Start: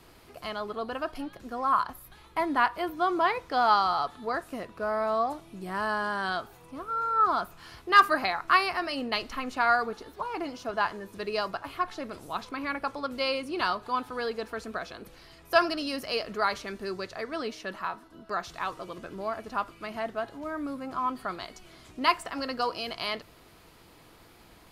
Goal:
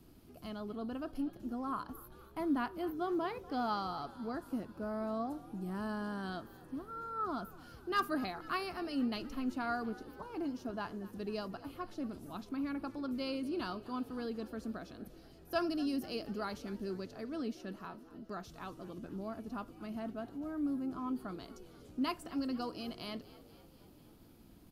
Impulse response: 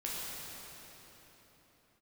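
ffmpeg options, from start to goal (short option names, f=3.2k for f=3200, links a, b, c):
-filter_complex "[0:a]equalizer=f=250:t=o:w=1:g=7,equalizer=f=500:t=o:w=1:g=-7,equalizer=f=1k:t=o:w=1:g=-9,equalizer=f=2k:t=o:w=1:g=-12,equalizer=f=4k:t=o:w=1:g=-6,equalizer=f=8k:t=o:w=1:g=-7,asplit=7[a][b][c][d][e][f][g];[b]adelay=241,afreqshift=53,volume=-19dB[h];[c]adelay=482,afreqshift=106,volume=-23dB[i];[d]adelay=723,afreqshift=159,volume=-27dB[j];[e]adelay=964,afreqshift=212,volume=-31dB[k];[f]adelay=1205,afreqshift=265,volume=-35.1dB[l];[g]adelay=1446,afreqshift=318,volume=-39.1dB[m];[a][h][i][j][k][l][m]amix=inputs=7:normalize=0,volume=-3dB"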